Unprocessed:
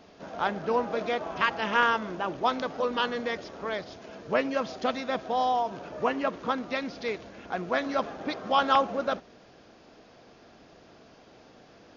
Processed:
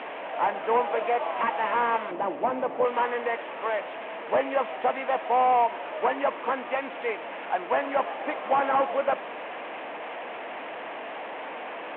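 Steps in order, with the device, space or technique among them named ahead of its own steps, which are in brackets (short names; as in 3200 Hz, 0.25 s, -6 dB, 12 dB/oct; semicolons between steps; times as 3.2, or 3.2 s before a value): digital answering machine (BPF 310–3300 Hz; delta modulation 16 kbps, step -35.5 dBFS; speaker cabinet 370–3200 Hz, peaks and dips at 390 Hz -6 dB, 910 Hz +4 dB, 1400 Hz -5 dB); 2.11–2.85 tilt shelf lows +8.5 dB, about 650 Hz; gain +6.5 dB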